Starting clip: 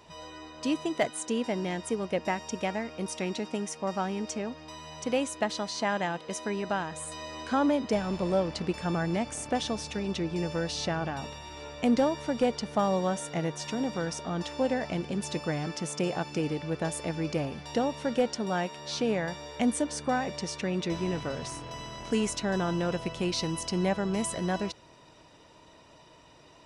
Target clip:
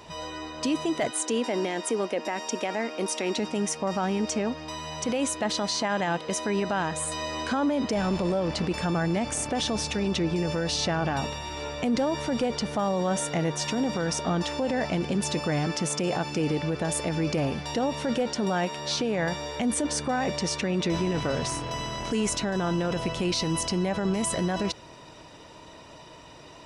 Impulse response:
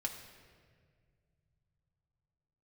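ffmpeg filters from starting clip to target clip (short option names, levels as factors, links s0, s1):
-filter_complex "[0:a]asettb=1/sr,asplit=3[s0][s1][s2];[s0]atrim=end=1.114[s3];[s1]atrim=start=1.11:end=3.37,asetpts=PTS-STARTPTS,afade=t=in:d=0.004:c=qsin,afade=t=out:st=2.256:d=0.004:c=qsin,highpass=f=240:w=0.5412,highpass=f=240:w=1.3066[s4];[s2]atrim=start=3.366[s5];[s3][s4]acrossfade=d=0.004:c1=hsin:c2=qsin[s6];[s6][s5]acrossfade=d=0.004:c1=qsin:c2=hsin,alimiter=level_in=1.33:limit=0.0631:level=0:latency=1:release=20,volume=0.75,volume=2.51"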